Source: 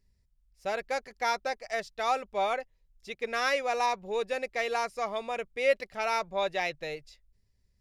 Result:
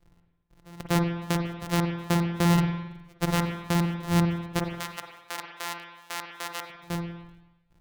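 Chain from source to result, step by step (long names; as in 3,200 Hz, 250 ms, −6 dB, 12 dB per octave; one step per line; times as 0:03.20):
samples sorted by size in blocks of 256 samples
0:04.59–0:06.70: high-pass filter 890 Hz 12 dB per octave
brickwall limiter −21.5 dBFS, peak gain reduction 11.5 dB
gate pattern "xx...x.." 150 BPM −24 dB
spring reverb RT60 1 s, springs 47/53 ms, chirp 50 ms, DRR 2.5 dB
level +6.5 dB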